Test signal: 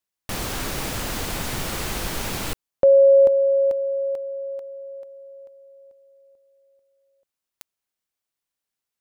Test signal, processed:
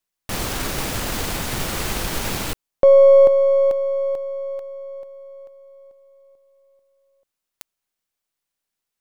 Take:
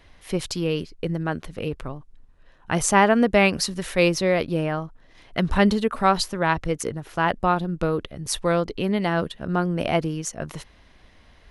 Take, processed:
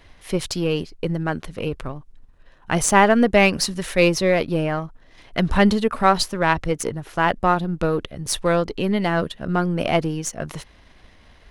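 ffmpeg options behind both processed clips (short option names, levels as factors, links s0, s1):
-af "aeval=exprs='if(lt(val(0),0),0.708*val(0),val(0))':c=same,volume=1.58"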